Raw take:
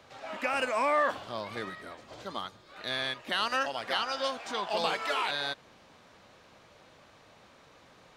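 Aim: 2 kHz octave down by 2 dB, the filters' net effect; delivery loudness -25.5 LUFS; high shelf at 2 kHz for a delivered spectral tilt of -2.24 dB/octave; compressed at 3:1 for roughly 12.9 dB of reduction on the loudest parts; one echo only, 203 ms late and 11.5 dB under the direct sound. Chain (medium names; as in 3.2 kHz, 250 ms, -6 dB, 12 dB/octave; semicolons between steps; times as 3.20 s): treble shelf 2 kHz +5.5 dB; peaking EQ 2 kHz -6 dB; compression 3:1, threshold -42 dBFS; delay 203 ms -11.5 dB; trim +16.5 dB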